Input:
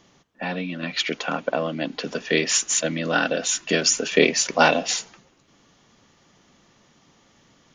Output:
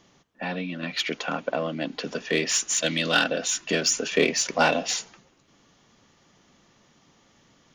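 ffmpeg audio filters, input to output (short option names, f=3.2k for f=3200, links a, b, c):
-filter_complex "[0:a]asplit=3[a][b][c];[a]afade=t=out:st=2.82:d=0.02[d];[b]equalizer=f=3.7k:w=0.87:g=13.5,afade=t=in:st=2.82:d=0.02,afade=t=out:st=3.22:d=0.02[e];[c]afade=t=in:st=3.22:d=0.02[f];[d][e][f]amix=inputs=3:normalize=0,asplit=2[g][h];[h]asoftclip=type=tanh:threshold=-17dB,volume=-3.5dB[i];[g][i]amix=inputs=2:normalize=0,volume=-6.5dB"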